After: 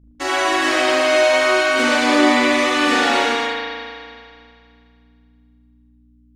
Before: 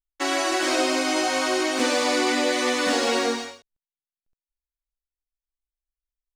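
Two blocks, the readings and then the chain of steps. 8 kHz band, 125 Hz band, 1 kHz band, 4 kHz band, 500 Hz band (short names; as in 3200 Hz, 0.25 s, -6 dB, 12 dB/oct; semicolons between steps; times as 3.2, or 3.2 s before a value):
0.0 dB, n/a, +7.5 dB, +5.0 dB, +7.0 dB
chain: hum 60 Hz, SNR 26 dB; spring tank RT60 2.3 s, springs 37 ms, chirp 60 ms, DRR -8 dB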